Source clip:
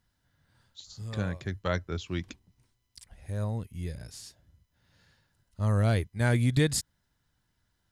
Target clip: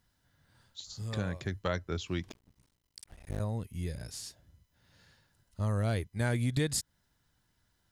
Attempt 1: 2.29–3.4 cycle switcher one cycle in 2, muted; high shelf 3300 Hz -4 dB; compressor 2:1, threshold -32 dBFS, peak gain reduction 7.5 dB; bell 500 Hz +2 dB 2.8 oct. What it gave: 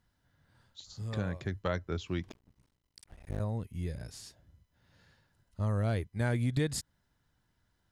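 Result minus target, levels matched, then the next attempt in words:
8000 Hz band -5.0 dB
2.29–3.4 cycle switcher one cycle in 2, muted; high shelf 3300 Hz +3.5 dB; compressor 2:1, threshold -32 dBFS, peak gain reduction 7.5 dB; bell 500 Hz +2 dB 2.8 oct

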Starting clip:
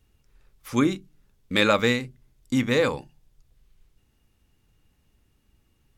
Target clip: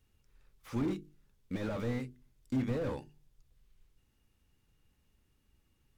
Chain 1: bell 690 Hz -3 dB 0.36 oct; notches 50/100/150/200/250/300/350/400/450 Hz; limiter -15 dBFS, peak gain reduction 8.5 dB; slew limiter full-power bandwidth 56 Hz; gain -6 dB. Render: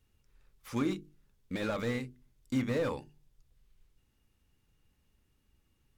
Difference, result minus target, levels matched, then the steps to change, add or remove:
slew limiter: distortion -7 dB
change: slew limiter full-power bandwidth 22 Hz

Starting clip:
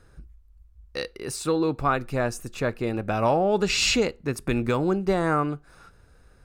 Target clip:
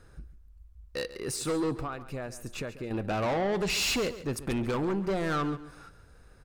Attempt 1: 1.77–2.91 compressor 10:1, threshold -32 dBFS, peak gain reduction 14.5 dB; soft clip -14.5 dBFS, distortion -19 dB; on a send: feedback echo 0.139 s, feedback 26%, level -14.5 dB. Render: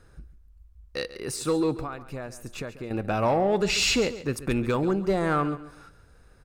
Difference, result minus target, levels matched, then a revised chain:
soft clip: distortion -12 dB
1.77–2.91 compressor 10:1, threshold -32 dBFS, peak gain reduction 14.5 dB; soft clip -25.5 dBFS, distortion -8 dB; on a send: feedback echo 0.139 s, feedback 26%, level -14.5 dB

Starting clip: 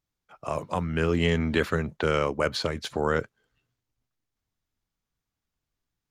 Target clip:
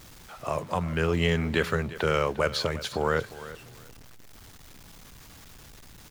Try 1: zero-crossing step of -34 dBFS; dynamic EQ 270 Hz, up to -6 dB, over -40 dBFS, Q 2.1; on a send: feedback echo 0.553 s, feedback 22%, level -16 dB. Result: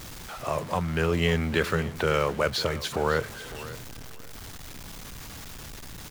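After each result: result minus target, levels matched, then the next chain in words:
echo 0.201 s late; zero-crossing step: distortion +7 dB
zero-crossing step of -34 dBFS; dynamic EQ 270 Hz, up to -6 dB, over -40 dBFS, Q 2.1; on a send: feedback echo 0.352 s, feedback 22%, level -16 dB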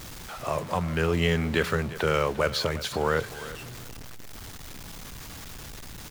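zero-crossing step: distortion +7 dB
zero-crossing step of -42 dBFS; dynamic EQ 270 Hz, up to -6 dB, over -40 dBFS, Q 2.1; on a send: feedback echo 0.352 s, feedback 22%, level -16 dB

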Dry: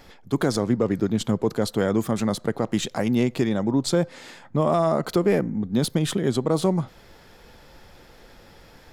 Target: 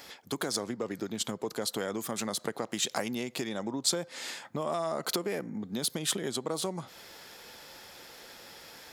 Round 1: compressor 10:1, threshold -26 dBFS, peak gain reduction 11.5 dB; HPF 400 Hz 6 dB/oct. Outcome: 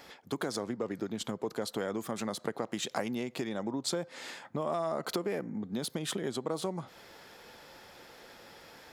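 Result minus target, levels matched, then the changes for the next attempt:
8000 Hz band -6.0 dB
add after HPF: high shelf 3000 Hz +9.5 dB

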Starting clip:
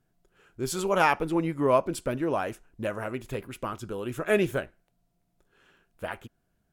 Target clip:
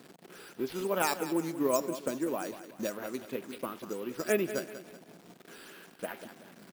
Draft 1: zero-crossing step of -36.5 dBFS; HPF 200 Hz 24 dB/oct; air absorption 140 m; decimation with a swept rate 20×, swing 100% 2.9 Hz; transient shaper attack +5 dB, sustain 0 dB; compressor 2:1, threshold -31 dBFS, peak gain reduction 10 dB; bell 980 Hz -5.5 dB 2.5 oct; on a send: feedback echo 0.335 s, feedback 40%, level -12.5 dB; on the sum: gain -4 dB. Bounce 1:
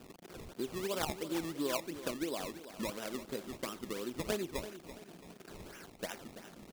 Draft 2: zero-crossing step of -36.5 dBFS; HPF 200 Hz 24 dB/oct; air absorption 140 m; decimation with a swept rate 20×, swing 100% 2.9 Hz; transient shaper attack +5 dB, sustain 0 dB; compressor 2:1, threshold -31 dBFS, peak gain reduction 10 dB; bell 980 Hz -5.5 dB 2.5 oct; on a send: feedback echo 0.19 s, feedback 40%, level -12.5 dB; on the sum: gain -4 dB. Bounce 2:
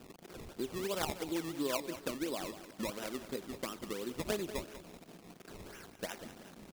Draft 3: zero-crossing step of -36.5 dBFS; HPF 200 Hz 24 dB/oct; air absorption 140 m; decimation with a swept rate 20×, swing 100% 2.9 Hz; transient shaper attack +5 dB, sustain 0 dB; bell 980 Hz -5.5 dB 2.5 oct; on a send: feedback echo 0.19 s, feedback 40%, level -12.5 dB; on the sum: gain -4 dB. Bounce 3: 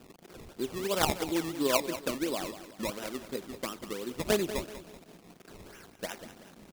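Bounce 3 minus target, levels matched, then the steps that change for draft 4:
decimation with a swept rate: distortion +13 dB
change: decimation with a swept rate 5×, swing 100% 2.9 Hz

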